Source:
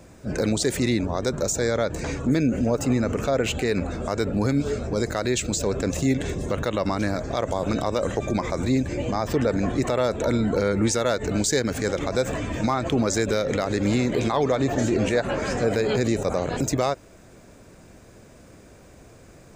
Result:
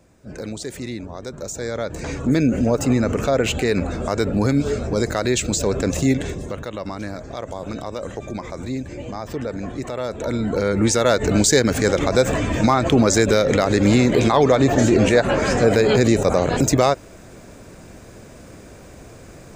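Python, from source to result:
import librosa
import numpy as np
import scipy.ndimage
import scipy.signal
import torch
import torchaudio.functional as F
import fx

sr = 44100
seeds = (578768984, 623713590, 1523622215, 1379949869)

y = fx.gain(x, sr, db=fx.line((1.31, -7.5), (2.39, 4.0), (6.11, 4.0), (6.63, -5.0), (9.9, -5.0), (11.16, 7.0)))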